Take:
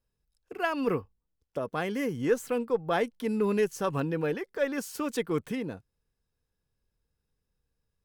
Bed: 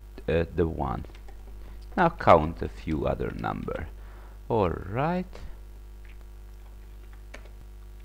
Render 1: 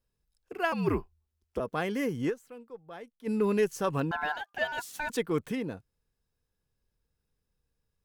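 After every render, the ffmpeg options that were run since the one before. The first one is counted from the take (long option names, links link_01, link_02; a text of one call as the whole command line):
ffmpeg -i in.wav -filter_complex "[0:a]asettb=1/sr,asplit=3[link_01][link_02][link_03];[link_01]atrim=end=0.724[link_04];[link_02]atrim=start=0.72:end=1.6,asetpts=PTS-STARTPTS,afade=type=in:duration=0.004:curve=qsin,afade=type=out:start_time=0.876:duration=0.004:curve=qsin,afreqshift=-80[link_05];[link_03]atrim=start=1.596[link_06];[link_04][link_05]acrossfade=duration=0.004:curve1=hsin:curve2=qsin[link_07];[link_07][link_06]acrossfade=duration=0.004:curve1=qsin:curve2=hsin,asettb=1/sr,asplit=3[link_08][link_09][link_10];[link_08]atrim=end=4.114[link_11];[link_09]atrim=start=4.11:end=5.1,asetpts=PTS-STARTPTS,afade=type=in:duration=0.004:curve=qsin,afade=type=out:start_time=0.986:duration=0.004:curve=qsin,aeval=exprs='val(0)*sin(2*PI*1200*n/s)':channel_layout=same[link_12];[link_10]atrim=start=5.096[link_13];[link_11][link_12]acrossfade=duration=0.004:curve1=hsin:curve2=qsin[link_14];[link_14][link_13]acrossfade=duration=0.004:curve1=qsin:curve2=hsin,asplit=3[link_15][link_16][link_17];[link_15]atrim=end=2.47,asetpts=PTS-STARTPTS,afade=type=out:start_time=2.29:duration=0.18:curve=exp:silence=0.133352[link_18];[link_16]atrim=start=2.47:end=3.1,asetpts=PTS-STARTPTS,volume=-17.5dB[link_19];[link_17]atrim=start=3.1,asetpts=PTS-STARTPTS,afade=type=in:duration=0.18:curve=exp:silence=0.133352[link_20];[link_18][link_19][link_20]concat=n=3:v=0:a=1" out.wav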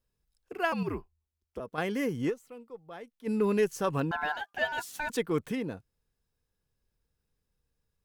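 ffmpeg -i in.wav -filter_complex "[0:a]asettb=1/sr,asplit=3[link_01][link_02][link_03];[link_01]atrim=end=2.284[link_04];[link_02]atrim=start=2.28:end=2.92,asetpts=PTS-STARTPTS,afade=type=in:duration=0.004:curve=qsin,afade=type=out:start_time=0.636:duration=0.004:curve=qsin,asuperstop=centerf=1600:order=4:qfactor=6.1[link_05];[link_03]atrim=start=2.916[link_06];[link_04][link_05]acrossfade=duration=0.004:curve1=hsin:curve2=qsin[link_07];[link_07][link_06]acrossfade=duration=0.004:curve1=qsin:curve2=hsin,asettb=1/sr,asplit=3[link_08][link_09][link_10];[link_08]atrim=end=4.354[link_11];[link_09]atrim=start=4.35:end=4.95,asetpts=PTS-STARTPTS,afade=type=in:duration=0.004:curve=qsin,afade=type=out:start_time=0.596:duration=0.004:curve=qsin,asplit=2[link_12][link_13];[link_13]adelay=12,volume=-9.5dB[link_14];[link_12][link_14]amix=inputs=2:normalize=0,atrim=end_sample=26460[link_15];[link_10]atrim=start=4.946[link_16];[link_11][link_15]acrossfade=duration=0.004:curve1=hsin:curve2=qsin[link_17];[link_17][link_16]acrossfade=duration=0.004:curve1=qsin:curve2=hsin,asplit=3[link_18][link_19][link_20];[link_18]atrim=end=0.832[link_21];[link_19]atrim=start=0.828:end=1.782,asetpts=PTS-STARTPTS,volume=-6.5dB[link_22];[link_20]atrim=start=1.778[link_23];[link_21][link_22]acrossfade=duration=0.004:curve1=hsin:curve2=hsin[link_24];[link_24][link_23]acrossfade=duration=0.004:curve1=hsin:curve2=hsin" out.wav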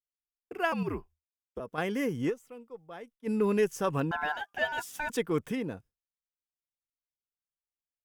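ffmpeg -i in.wav -af "bandreject=frequency=4200:width=6.4,agate=range=-33dB:threshold=-50dB:ratio=3:detection=peak" out.wav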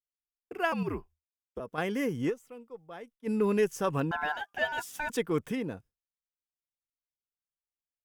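ffmpeg -i in.wav -af anull out.wav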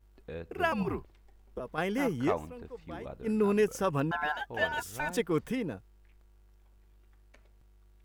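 ffmpeg -i in.wav -i bed.wav -filter_complex "[1:a]volume=-16dB[link_01];[0:a][link_01]amix=inputs=2:normalize=0" out.wav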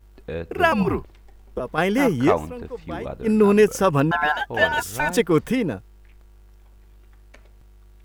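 ffmpeg -i in.wav -af "volume=11dB" out.wav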